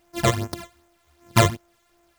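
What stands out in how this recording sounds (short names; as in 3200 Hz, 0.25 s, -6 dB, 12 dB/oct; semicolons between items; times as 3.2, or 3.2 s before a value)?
a buzz of ramps at a fixed pitch in blocks of 128 samples; phasing stages 12, 2.6 Hz, lowest notch 250–4200 Hz; a quantiser's noise floor 12-bit, dither none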